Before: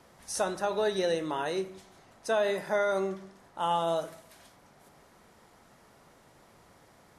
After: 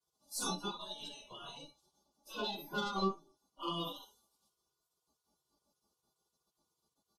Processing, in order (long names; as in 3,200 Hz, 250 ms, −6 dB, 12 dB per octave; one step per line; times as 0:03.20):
comb filter 4.9 ms, depth 89%
rectangular room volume 150 cubic metres, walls furnished, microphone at 2.3 metres
noise reduction from a noise print of the clip's start 25 dB
tuned comb filter 290 Hz, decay 0.22 s, harmonics all, mix 100%
in parallel at −8 dB: soft clipping −30.5 dBFS, distortion −11 dB
on the sum: Chebyshev band-stop filter 910–3,800 Hz, order 2
high-shelf EQ 8,400 Hz −3 dB
mains-hum notches 50/100/150 Hz
on a send: ambience of single reflections 14 ms −10.5 dB, 55 ms −17.5 dB
on the sum: gate on every frequency bin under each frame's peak −25 dB weak
level +15.5 dB